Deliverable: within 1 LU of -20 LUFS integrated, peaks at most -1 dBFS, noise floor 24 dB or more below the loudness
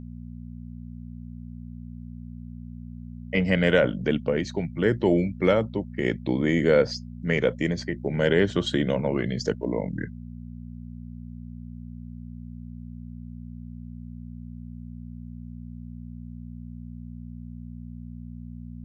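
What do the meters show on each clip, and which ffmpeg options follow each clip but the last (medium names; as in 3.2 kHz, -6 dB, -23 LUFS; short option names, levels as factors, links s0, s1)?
hum 60 Hz; highest harmonic 240 Hz; hum level -36 dBFS; loudness -25.0 LUFS; peak level -6.5 dBFS; loudness target -20.0 LUFS
-> -af "bandreject=f=60:t=h:w=4,bandreject=f=120:t=h:w=4,bandreject=f=180:t=h:w=4,bandreject=f=240:t=h:w=4"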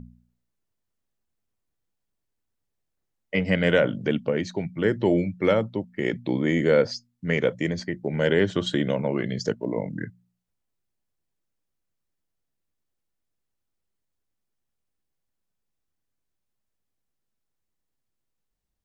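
hum not found; loudness -25.0 LUFS; peak level -7.0 dBFS; loudness target -20.0 LUFS
-> -af "volume=1.78"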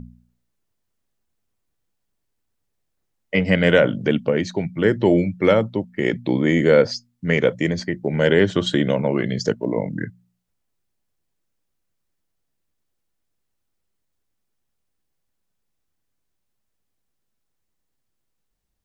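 loudness -20.0 LUFS; peak level -1.5 dBFS; noise floor -75 dBFS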